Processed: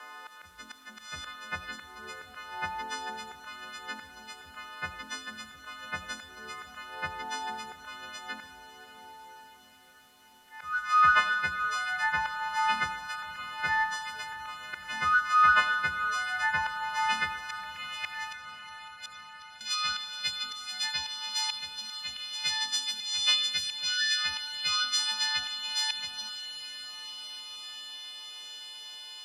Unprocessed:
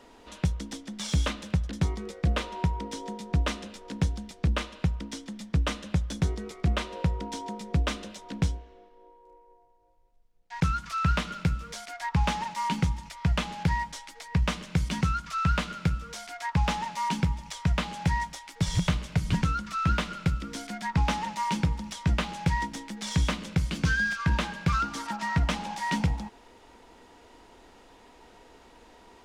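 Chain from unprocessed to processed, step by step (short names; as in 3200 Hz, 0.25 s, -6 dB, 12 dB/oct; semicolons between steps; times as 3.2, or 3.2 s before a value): frequency quantiser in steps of 3 st; bell 79 Hz +7 dB 0.54 oct; notches 60/120/180/240/300/360/420/480/540 Hz; in parallel at 0 dB: compressor 6:1, threshold -40 dBFS, peak gain reduction 20.5 dB; on the sum: band-pass sweep 1400 Hz -> 3800 Hz, 16.83–19.14; auto swell 0.326 s; requantised 12-bit, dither triangular; 18.31–19.61 flipped gate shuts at -37 dBFS, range -27 dB; diffused feedback echo 0.577 s, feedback 71%, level -13.5 dB; on a send at -11 dB: reverb RT60 0.45 s, pre-delay 50 ms; on the sum: gain +7 dB; AAC 96 kbps 32000 Hz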